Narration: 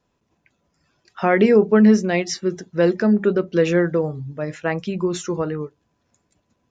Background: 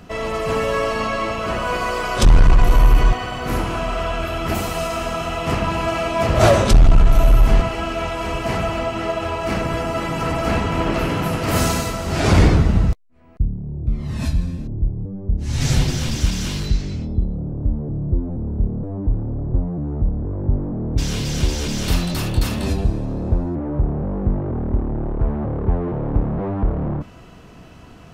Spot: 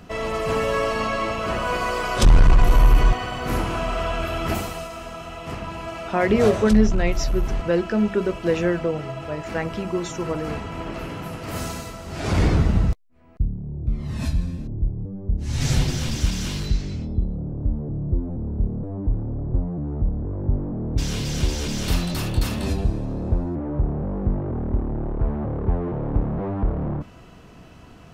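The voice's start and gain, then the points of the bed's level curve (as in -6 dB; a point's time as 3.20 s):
4.90 s, -4.0 dB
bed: 4.51 s -2 dB
4.90 s -11 dB
12.14 s -11 dB
12.62 s -3 dB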